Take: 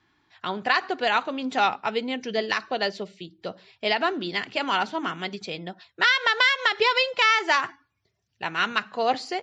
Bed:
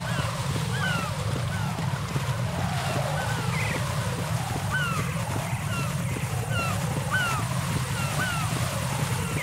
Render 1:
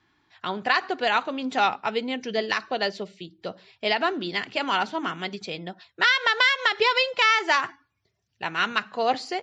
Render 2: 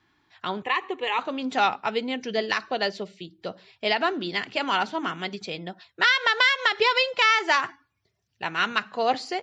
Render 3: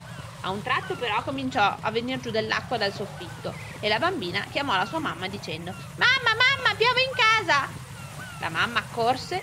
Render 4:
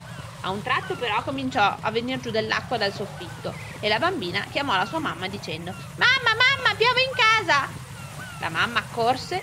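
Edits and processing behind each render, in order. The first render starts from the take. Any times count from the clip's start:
no processing that can be heard
0:00.62–0:01.19: phaser with its sweep stopped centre 1,000 Hz, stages 8
mix in bed −11.5 dB
level +1.5 dB

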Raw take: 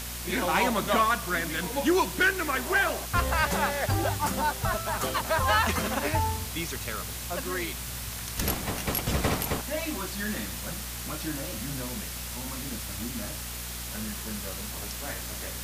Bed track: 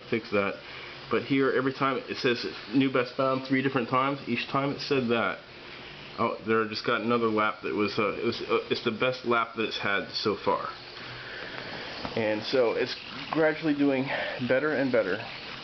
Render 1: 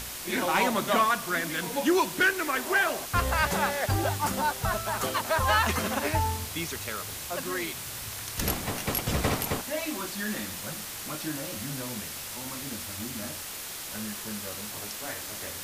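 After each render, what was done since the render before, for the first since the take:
hum removal 60 Hz, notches 4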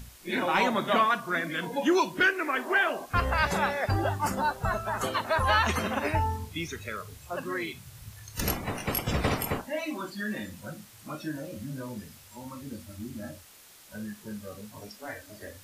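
noise reduction from a noise print 15 dB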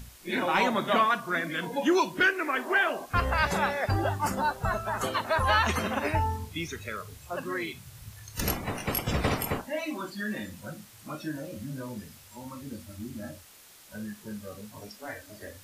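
no processing that can be heard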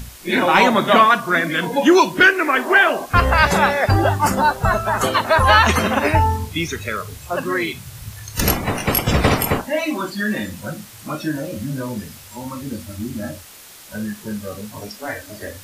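level +11.5 dB

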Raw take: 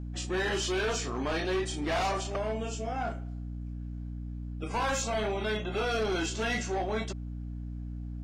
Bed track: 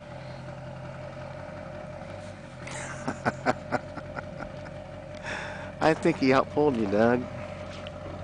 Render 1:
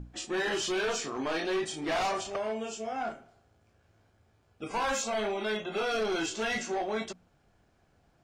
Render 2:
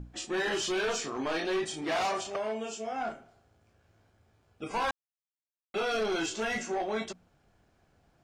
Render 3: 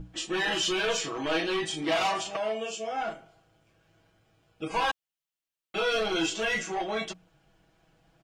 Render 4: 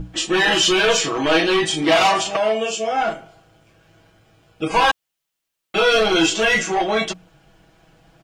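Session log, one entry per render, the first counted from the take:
mains-hum notches 60/120/180/240/300 Hz
0:01.82–0:02.99: high-pass filter 120 Hz 6 dB per octave; 0:04.91–0:05.74: silence; 0:06.40–0:06.80: parametric band 3,900 Hz −5.5 dB 0.86 octaves
parametric band 3,000 Hz +6 dB 0.55 octaves; comb filter 6.2 ms, depth 82%
level +11.5 dB

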